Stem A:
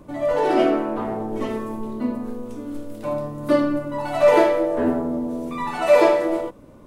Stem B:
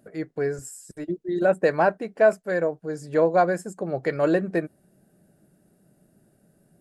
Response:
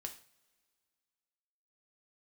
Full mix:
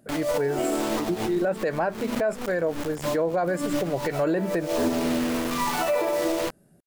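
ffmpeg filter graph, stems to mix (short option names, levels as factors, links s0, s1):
-filter_complex "[0:a]acrusher=bits=4:mix=0:aa=0.000001,acompressor=threshold=0.112:ratio=6,volume=1.06[s0];[1:a]volume=1.19,asplit=2[s1][s2];[s2]apad=whole_len=302935[s3];[s0][s3]sidechaincompress=threshold=0.0158:ratio=8:attack=23:release=100[s4];[s4][s1]amix=inputs=2:normalize=0,alimiter=limit=0.15:level=0:latency=1:release=45"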